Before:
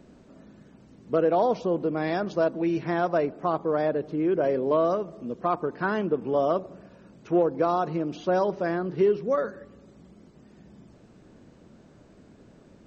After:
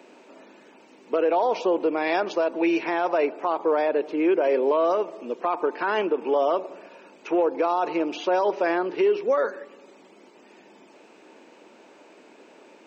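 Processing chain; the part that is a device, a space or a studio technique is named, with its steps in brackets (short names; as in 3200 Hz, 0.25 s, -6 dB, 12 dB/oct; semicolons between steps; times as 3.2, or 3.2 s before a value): laptop speaker (HPF 320 Hz 24 dB/oct; bell 900 Hz +8.5 dB 0.23 oct; bell 2500 Hz +10 dB 0.52 oct; limiter -20 dBFS, peak gain reduction 10 dB); gain +6 dB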